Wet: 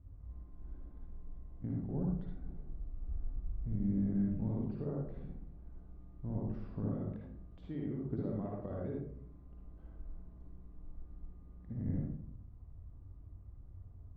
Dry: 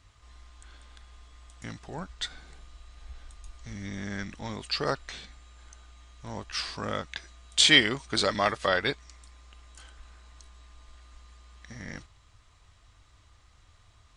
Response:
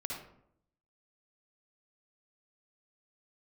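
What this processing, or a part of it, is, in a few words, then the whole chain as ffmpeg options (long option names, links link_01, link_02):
television next door: -filter_complex "[0:a]acompressor=threshold=-36dB:ratio=4,lowpass=280[link_01];[1:a]atrim=start_sample=2205[link_02];[link_01][link_02]afir=irnorm=-1:irlink=0,volume=7.5dB"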